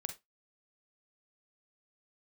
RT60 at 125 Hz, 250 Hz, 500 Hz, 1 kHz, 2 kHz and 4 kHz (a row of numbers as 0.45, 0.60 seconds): 0.15, 0.20, 0.20, 0.20, 0.15, 0.15 seconds